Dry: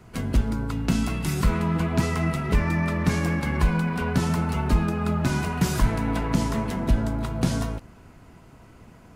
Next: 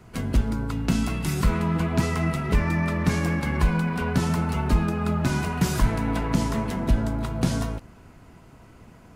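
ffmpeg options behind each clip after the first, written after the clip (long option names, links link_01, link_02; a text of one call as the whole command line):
ffmpeg -i in.wav -af anull out.wav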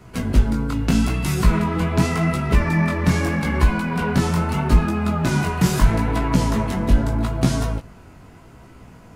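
ffmpeg -i in.wav -af "flanger=delay=15:depth=7.3:speed=0.8,volume=7.5dB" out.wav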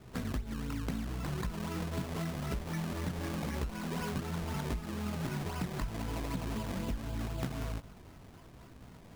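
ffmpeg -i in.wav -af "acompressor=threshold=-24dB:ratio=12,acrusher=samples=22:mix=1:aa=0.000001:lfo=1:lforange=22:lforate=3.9,volume=-8.5dB" out.wav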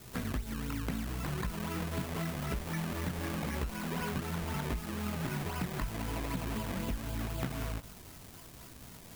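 ffmpeg -i in.wav -filter_complex "[0:a]acrossover=split=2800[link_01][link_02];[link_02]acompressor=threshold=-58dB:ratio=4:attack=1:release=60[link_03];[link_01][link_03]amix=inputs=2:normalize=0,crystalizer=i=4.5:c=0" out.wav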